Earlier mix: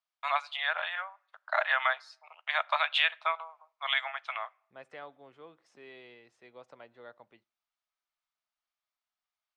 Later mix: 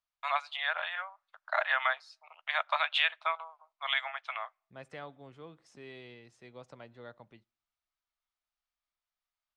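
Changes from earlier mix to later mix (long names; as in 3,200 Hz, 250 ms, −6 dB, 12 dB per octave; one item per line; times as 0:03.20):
first voice: send −11.5 dB
second voice: add bass and treble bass +14 dB, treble +8 dB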